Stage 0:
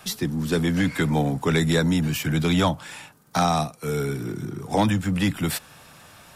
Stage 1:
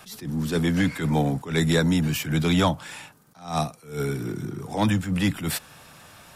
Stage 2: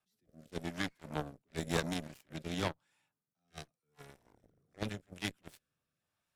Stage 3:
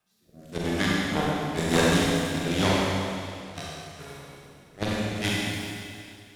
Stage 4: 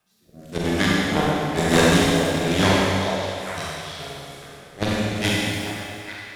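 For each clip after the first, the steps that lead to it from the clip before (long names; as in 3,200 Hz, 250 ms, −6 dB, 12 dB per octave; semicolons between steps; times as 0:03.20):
level that may rise only so fast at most 140 dB per second
harmonic generator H 3 −9 dB, 5 −42 dB, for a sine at −9.5 dBFS; rotating-speaker cabinet horn 0.9 Hz; level −3 dB
four-comb reverb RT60 2.4 s, combs from 32 ms, DRR −6 dB; level +8 dB
echo through a band-pass that steps 423 ms, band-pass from 580 Hz, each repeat 1.4 octaves, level −4.5 dB; level +5 dB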